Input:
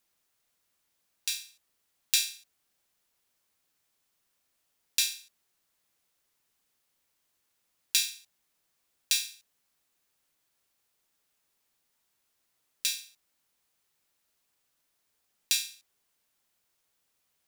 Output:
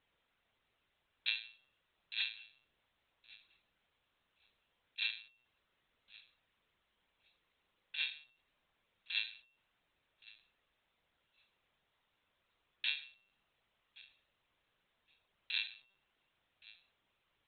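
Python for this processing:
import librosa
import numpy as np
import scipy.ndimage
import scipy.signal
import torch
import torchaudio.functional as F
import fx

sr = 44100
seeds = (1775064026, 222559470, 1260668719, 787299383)

y = fx.over_compress(x, sr, threshold_db=-28.0, ratio=-0.5)
y = fx.comb_fb(y, sr, f0_hz=100.0, decay_s=0.67, harmonics='odd', damping=0.0, mix_pct=70)
y = fx.echo_thinned(y, sr, ms=1116, feedback_pct=16, hz=420.0, wet_db=-21.5)
y = fx.lpc_vocoder(y, sr, seeds[0], excitation='pitch_kept', order=16)
y = y * 10.0 ** (9.5 / 20.0)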